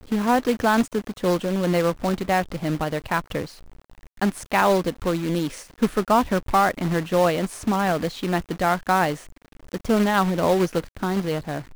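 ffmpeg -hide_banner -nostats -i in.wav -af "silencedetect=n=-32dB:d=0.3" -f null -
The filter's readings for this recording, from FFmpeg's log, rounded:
silence_start: 3.46
silence_end: 4.21 | silence_duration: 0.76
silence_start: 9.17
silence_end: 9.72 | silence_duration: 0.55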